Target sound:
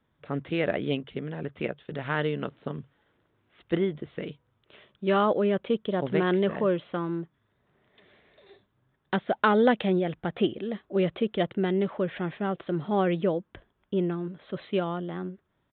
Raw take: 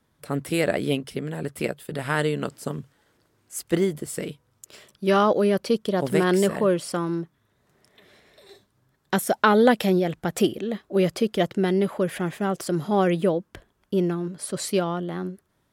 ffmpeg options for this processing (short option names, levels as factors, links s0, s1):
-af "aresample=8000,aresample=44100,volume=0.631"